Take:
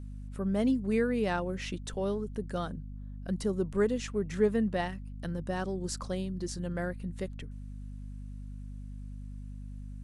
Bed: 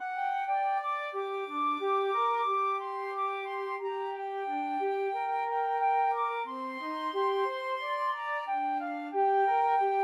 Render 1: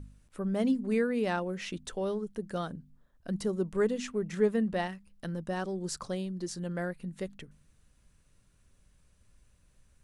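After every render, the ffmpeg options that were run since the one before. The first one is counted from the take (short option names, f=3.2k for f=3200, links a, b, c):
-af "bandreject=f=50:t=h:w=4,bandreject=f=100:t=h:w=4,bandreject=f=150:t=h:w=4,bandreject=f=200:t=h:w=4,bandreject=f=250:t=h:w=4"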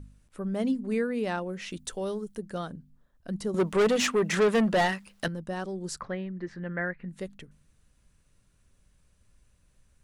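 -filter_complex "[0:a]asettb=1/sr,asplit=3[a][b][c];[a]atrim=end=1.714[d];[b]atrim=start=1.71:end=2.4,asetpts=PTS-STARTPTS,afade=t=in:d=0.004:c=qsin,afade=t=out:st=0.686:d=0.004:c=qsin,highshelf=f=5.1k:g=10[e];[c]atrim=start=2.396[f];[d][e]acrossfade=d=0.004:c1=hsin:c2=qsin[g];[g][f]acrossfade=d=0.004:c1=qsin:c2=hsin,asettb=1/sr,asplit=3[h][i][j];[h]atrim=end=3.544[k];[i]atrim=start=3.54:end=5.28,asetpts=PTS-STARTPTS,afade=t=in:d=0.004:c=qsin,afade=t=out:st=1.736:d=0.004:c=qsin,asplit=2[l][m];[m]highpass=f=720:p=1,volume=25dB,asoftclip=type=tanh:threshold=-15dB[n];[l][n]amix=inputs=2:normalize=0,lowpass=f=6.6k:p=1,volume=-6dB[o];[j]atrim=start=5.276[p];[k][o]acrossfade=d=0.004:c1=hsin:c2=qsin[q];[q][p]acrossfade=d=0.004:c1=qsin:c2=hsin,asettb=1/sr,asplit=3[r][s][t];[r]atrim=end=6.004[u];[s]atrim=start=6:end=7.09,asetpts=PTS-STARTPTS,afade=t=in:d=0.004:c=qsin,afade=t=out:st=1.086:d=0.004:c=qsin,lowpass=f=1.9k:t=q:w=3.9[v];[t]atrim=start=7.086[w];[u][v]acrossfade=d=0.004:c1=hsin:c2=qsin[x];[x][w]acrossfade=d=0.004:c1=qsin:c2=hsin"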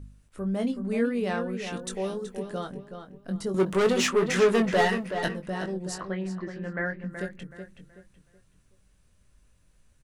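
-filter_complex "[0:a]asplit=2[a][b];[b]adelay=21,volume=-6.5dB[c];[a][c]amix=inputs=2:normalize=0,asplit=2[d][e];[e]adelay=375,lowpass=f=3.5k:p=1,volume=-8dB,asplit=2[f][g];[g]adelay=375,lowpass=f=3.5k:p=1,volume=0.33,asplit=2[h][i];[i]adelay=375,lowpass=f=3.5k:p=1,volume=0.33,asplit=2[j][k];[k]adelay=375,lowpass=f=3.5k:p=1,volume=0.33[l];[f][h][j][l]amix=inputs=4:normalize=0[m];[d][m]amix=inputs=2:normalize=0"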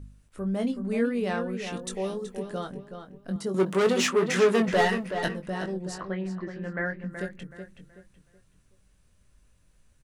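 -filter_complex "[0:a]asettb=1/sr,asplit=3[a][b][c];[a]atrim=end=1.714[d];[b]atrim=start=1.71:end=2.32,asetpts=PTS-STARTPTS,afade=t=in:d=0.004:c=qsin,afade=t=out:st=0.606:d=0.004:c=qsin,bandreject=f=1.5k:w=7.8[e];[c]atrim=start=2.316[f];[d][e]acrossfade=d=0.004:c1=hsin:c2=qsin[g];[g][f]acrossfade=d=0.004:c1=qsin:c2=hsin,asettb=1/sr,asplit=3[h][i][j];[h]atrim=end=3.364[k];[i]atrim=start=3.36:end=4.68,asetpts=PTS-STARTPTS,afade=t=in:d=0.004:c=qsin,afade=t=out:st=1.316:d=0.004:c=qsin,highpass=110[l];[j]atrim=start=4.676[m];[k][l]acrossfade=d=0.004:c1=hsin:c2=qsin[n];[n][m]acrossfade=d=0.004:c1=qsin:c2=hsin,asettb=1/sr,asplit=3[o][p][q];[o]atrim=end=5.814[r];[p]atrim=start=5.81:end=6.59,asetpts=PTS-STARTPTS,afade=t=in:d=0.004:c=qsin,afade=t=out:st=0.776:d=0.004:c=qsin,highshelf=f=6.6k:g=-8[s];[q]atrim=start=6.586[t];[r][s]acrossfade=d=0.004:c1=hsin:c2=qsin[u];[u][t]acrossfade=d=0.004:c1=qsin:c2=hsin"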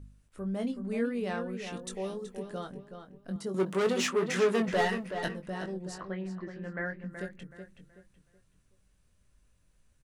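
-af "volume=-5dB"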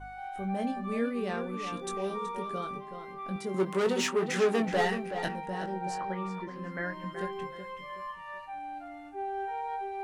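-filter_complex "[1:a]volume=-9dB[a];[0:a][a]amix=inputs=2:normalize=0"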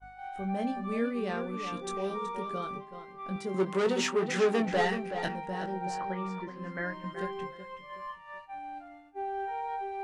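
-af "agate=range=-33dB:threshold=-38dB:ratio=3:detection=peak,lowpass=8.5k"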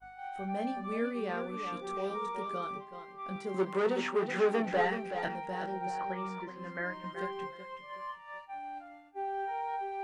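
-filter_complex "[0:a]acrossover=split=2500[a][b];[b]acompressor=threshold=-51dB:ratio=4:attack=1:release=60[c];[a][c]amix=inputs=2:normalize=0,lowshelf=f=220:g=-8.5"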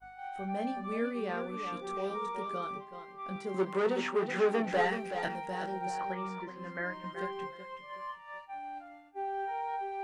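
-filter_complex "[0:a]asettb=1/sr,asplit=3[a][b][c];[a]atrim=end=4.694[d];[b]atrim=start=4.69:end=6.15,asetpts=PTS-STARTPTS,afade=t=in:d=0.004:c=qsin,afade=t=out:st=1.456:d=0.004:c=qsin,highshelf=f=5.8k:g=9.5[e];[c]atrim=start=6.146[f];[d][e]acrossfade=d=0.004:c1=hsin:c2=qsin[g];[g][f]acrossfade=d=0.004:c1=qsin:c2=hsin"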